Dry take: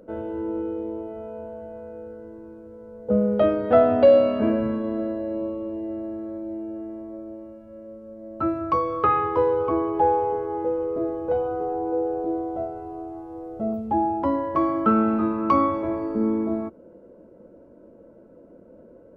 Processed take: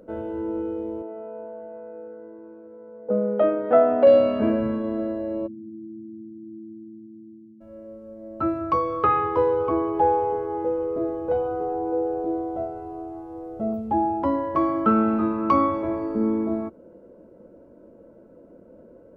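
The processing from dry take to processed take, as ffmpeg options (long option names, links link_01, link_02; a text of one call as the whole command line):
ffmpeg -i in.wav -filter_complex "[0:a]asettb=1/sr,asplit=3[link_01][link_02][link_03];[link_01]atrim=end=1.024[link_04];[link_02]atrim=start=1.02:end=4.07,asetpts=PTS-STARTPTS,afade=type=in:duration=0.004:curve=qsin,afade=type=out:start_time=3.046:duration=0.004:curve=qsin,highpass=260,lowpass=2000[link_05];[link_03]atrim=start=4.066[link_06];[link_04][link_05]acrossfade=duration=0.004:curve1=hsin:curve2=qsin[link_07];[link_07][link_06]acrossfade=duration=0.004:curve1=qsin:curve2=hsin,asplit=3[link_08][link_09][link_10];[link_08]afade=type=out:start_time=5.46:duration=0.02[link_11];[link_09]asuperpass=centerf=180:order=12:qfactor=0.9,afade=type=in:start_time=5.46:duration=0.02,afade=type=out:start_time=7.6:duration=0.02[link_12];[link_10]afade=type=in:start_time=7.6:duration=0.02[link_13];[link_11][link_12][link_13]amix=inputs=3:normalize=0" out.wav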